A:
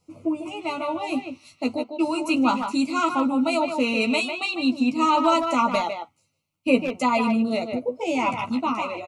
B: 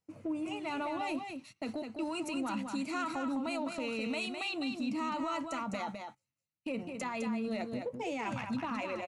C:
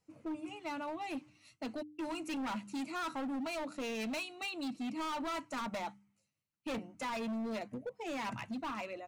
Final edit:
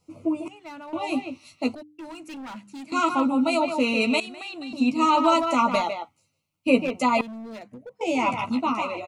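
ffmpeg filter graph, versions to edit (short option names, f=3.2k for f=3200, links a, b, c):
-filter_complex "[2:a]asplit=3[a][b][c];[0:a]asplit=5[d][e][f][g][h];[d]atrim=end=0.482[i];[a]atrim=start=0.478:end=0.932[j];[e]atrim=start=0.928:end=1.752[k];[b]atrim=start=1.748:end=2.922[l];[f]atrim=start=2.918:end=4.202[m];[1:a]atrim=start=4.198:end=4.732[n];[g]atrim=start=4.728:end=7.212[o];[c]atrim=start=7.208:end=8.012[p];[h]atrim=start=8.008[q];[i][j]acrossfade=d=0.004:c1=hsin:c2=hsin[r];[r][k]acrossfade=d=0.004:c1=hsin:c2=hsin[s];[s][l]acrossfade=d=0.004:c1=hsin:c2=hsin[t];[t][m]acrossfade=d=0.004:c1=hsin:c2=hsin[u];[u][n]acrossfade=d=0.004:c1=hsin:c2=hsin[v];[v][o]acrossfade=d=0.004:c1=hsin:c2=hsin[w];[w][p]acrossfade=d=0.004:c1=hsin:c2=hsin[x];[x][q]acrossfade=d=0.004:c1=hsin:c2=hsin"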